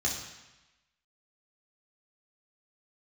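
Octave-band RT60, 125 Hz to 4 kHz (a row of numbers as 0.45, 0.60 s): 1.1, 1.0, 0.95, 1.1, 1.2, 1.1 s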